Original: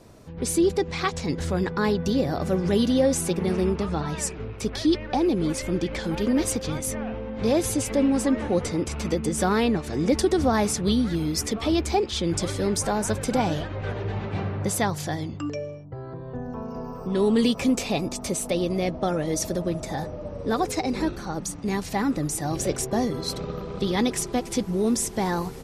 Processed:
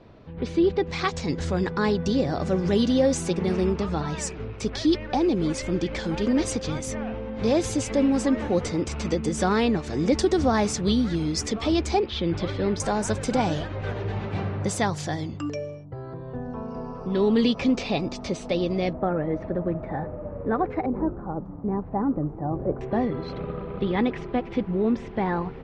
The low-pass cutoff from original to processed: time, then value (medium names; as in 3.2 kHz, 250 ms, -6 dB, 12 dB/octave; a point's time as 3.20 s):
low-pass 24 dB/octave
3.8 kHz
from 0.87 s 7.6 kHz
from 11.99 s 3.9 kHz
from 12.80 s 8.2 kHz
from 16.15 s 5 kHz
from 18.93 s 1.9 kHz
from 20.86 s 1.1 kHz
from 22.81 s 2.8 kHz